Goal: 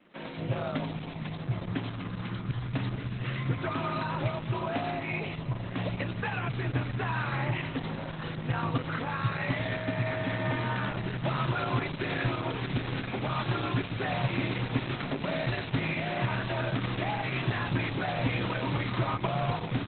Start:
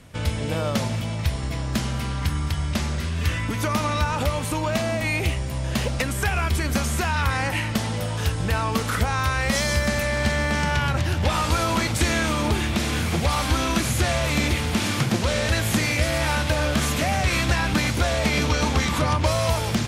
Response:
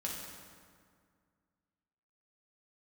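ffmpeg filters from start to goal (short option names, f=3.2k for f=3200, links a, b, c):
-filter_complex "[0:a]acrossover=split=9100[a][b];[b]acompressor=threshold=-46dB:ratio=4:attack=1:release=60[c];[a][c]amix=inputs=2:normalize=0,highshelf=f=8.2k:g=6.5,acrossover=split=150|3700[d][e][f];[f]adelay=90[g];[d]adelay=220[h];[h][e][g]amix=inputs=3:normalize=0,afreqshift=49,asplit=2[i][j];[j]aecho=0:1:867|1734|2601:0.224|0.0694|0.0215[k];[i][k]amix=inputs=2:normalize=0,volume=-6dB" -ar 48000 -c:a libopus -b:a 8k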